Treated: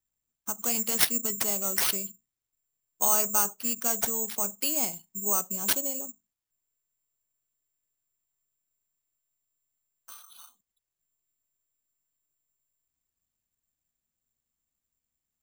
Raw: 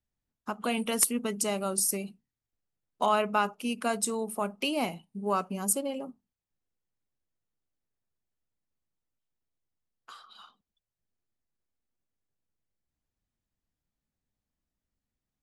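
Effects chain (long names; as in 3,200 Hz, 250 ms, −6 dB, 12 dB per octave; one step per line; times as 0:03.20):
bad sample-rate conversion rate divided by 6×, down none, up zero stuff
level −6 dB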